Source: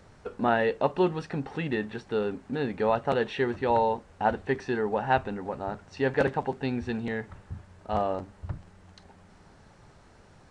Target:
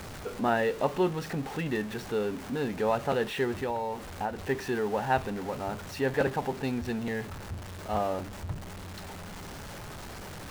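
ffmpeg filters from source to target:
-filter_complex "[0:a]aeval=exprs='val(0)+0.5*0.02*sgn(val(0))':c=same,asettb=1/sr,asplit=3[a][b][c];[a]atrim=end=3.584[d];[b]atrim=start=3.58:end=4.39,asetpts=PTS-STARTPTS,afade=t=in:d=0.004:c=qsin,afade=t=out:st=0.806:d=0.004:c=qsin,acompressor=threshold=-25dB:ratio=10[e];[c]atrim=start=4.386[f];[d][e]acrossfade=d=0.004:c1=hsin:c2=qsin[g];[g][f]acrossfade=d=0.004:c1=qsin:c2=hsin,volume=-3dB"

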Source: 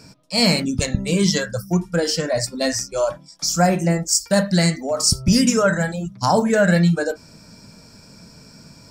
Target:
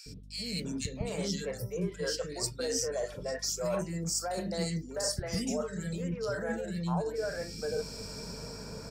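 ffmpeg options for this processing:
-filter_complex "[0:a]equalizer=f=440:w=4.5:g=14,acrossover=split=410[a][b];[b]dynaudnorm=f=130:g=11:m=5.5dB[c];[a][c]amix=inputs=2:normalize=0,alimiter=limit=-8dB:level=0:latency=1:release=19,areverse,acompressor=threshold=-30dB:ratio=8,areverse,aeval=exprs='val(0)+0.00355*(sin(2*PI*50*n/s)+sin(2*PI*2*50*n/s)/2+sin(2*PI*3*50*n/s)/3+sin(2*PI*4*50*n/s)/4+sin(2*PI*5*50*n/s)/5)':c=same,acrossover=split=360|2100[d][e][f];[d]adelay=60[g];[e]adelay=650[h];[g][h][f]amix=inputs=3:normalize=0"

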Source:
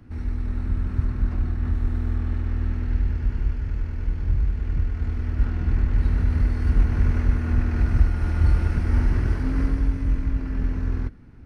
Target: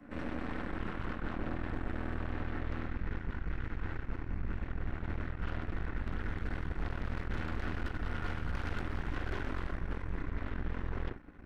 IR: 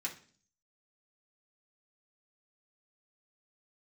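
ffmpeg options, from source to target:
-filter_complex "[0:a]acrossover=split=200 2100:gain=0.0794 1 0.224[a][b][c];[a][b][c]amix=inputs=3:normalize=0[d];[1:a]atrim=start_sample=2205,afade=t=out:st=0.14:d=0.01,atrim=end_sample=6615[e];[d][e]afir=irnorm=-1:irlink=0,asoftclip=type=hard:threshold=-31dB,asubboost=boost=12:cutoff=53,areverse,acompressor=threshold=-39dB:ratio=6,areverse,aeval=exprs='0.0266*(cos(1*acos(clip(val(0)/0.0266,-1,1)))-cos(1*PI/2))+0.00841*(cos(6*acos(clip(val(0)/0.0266,-1,1)))-cos(6*PI/2))':c=same,volume=3dB"

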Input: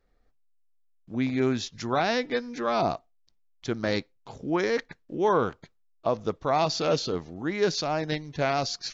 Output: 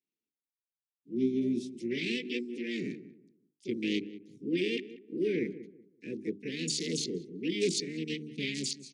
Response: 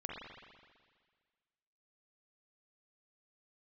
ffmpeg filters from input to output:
-filter_complex "[0:a]afwtdn=0.0224,highpass=f=170:w=0.5412,highpass=f=170:w=1.3066,bandreject=f=50:t=h:w=6,bandreject=f=100:t=h:w=6,bandreject=f=150:t=h:w=6,bandreject=f=200:t=h:w=6,bandreject=f=250:t=h:w=6,bandreject=f=300:t=h:w=6,bandreject=f=350:t=h:w=6,bandreject=f=400:t=h:w=6,asplit=2[a][b];[b]asetrate=66075,aresample=44100,atempo=0.66742,volume=-2dB[c];[a][c]amix=inputs=2:normalize=0,asuperstop=centerf=940:order=12:qfactor=0.54,asplit=2[d][e];[e]adelay=188,lowpass=f=1k:p=1,volume=-13.5dB,asplit=2[f][g];[g]adelay=188,lowpass=f=1k:p=1,volume=0.28,asplit=2[h][i];[i]adelay=188,lowpass=f=1k:p=1,volume=0.28[j];[d][f][h][j]amix=inputs=4:normalize=0,volume=-1.5dB"

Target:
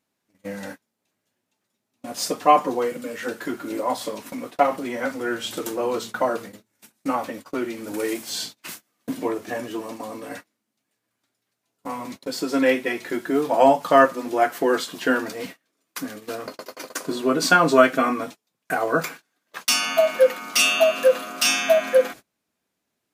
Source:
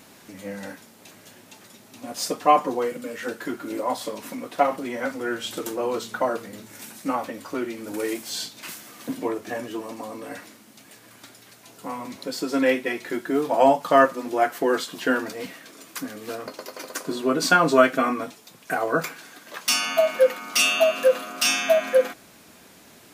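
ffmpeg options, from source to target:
-af "agate=range=-30dB:threshold=-37dB:ratio=16:detection=peak,volume=1.5dB"

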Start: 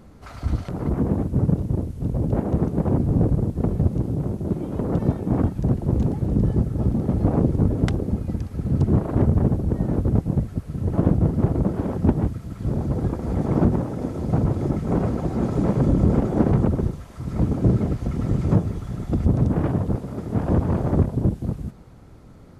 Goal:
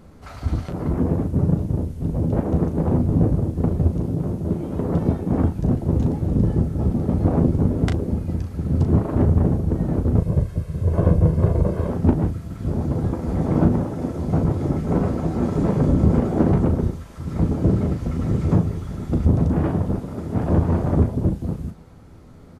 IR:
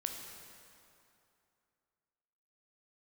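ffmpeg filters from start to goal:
-filter_complex "[0:a]asettb=1/sr,asplit=3[a][b][c];[a]atrim=end=10.184[d];[b]atrim=start=10.18:end=11.89,asetpts=PTS-STARTPTS,afade=t=in:d=0.004:c=qsin,afade=t=out:st=1.706:d=0.004:c=qsin,aecho=1:1:1.9:0.6,atrim=end_sample=75411[e];[c]atrim=start=11.886[f];[d][e]acrossfade=d=0.004:c1=hsin:c2=qsin[g];[g][f]acrossfade=d=0.004:c1=qsin:c2=hsin,aecho=1:1:12|37:0.376|0.422"

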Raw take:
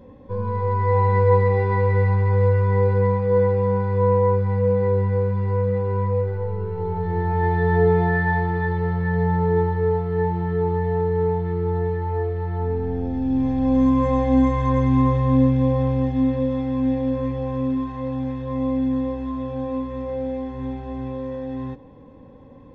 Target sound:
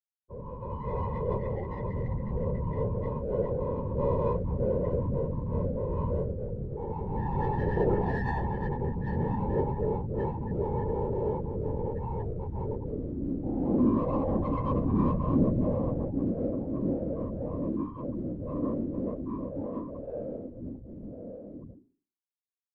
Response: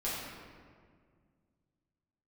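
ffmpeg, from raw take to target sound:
-af "afftfilt=real='re*gte(hypot(re,im),0.1)':imag='im*gte(hypot(re,im),0.1)':win_size=1024:overlap=0.75,bandreject=f=60:t=h:w=6,bandreject=f=120:t=h:w=6,bandreject=f=180:t=h:w=6,bandreject=f=240:t=h:w=6,bandreject=f=300:t=h:w=6,bandreject=f=360:t=h:w=6,adynamicequalizer=threshold=0.00447:dfrequency=1700:dqfactor=3.2:tfrequency=1700:tqfactor=3.2:attack=5:release=100:ratio=0.375:range=2.5:mode=cutabove:tftype=bell,dynaudnorm=f=500:g=13:m=11.5dB,flanger=delay=8.9:depth=1.7:regen=-86:speed=0.36:shape=triangular,adynamicsmooth=sensitivity=1.5:basefreq=2.4k,afftfilt=real='hypot(re,im)*cos(2*PI*random(0))':imag='hypot(re,im)*sin(2*PI*random(1))':win_size=512:overlap=0.75,volume=-4dB"

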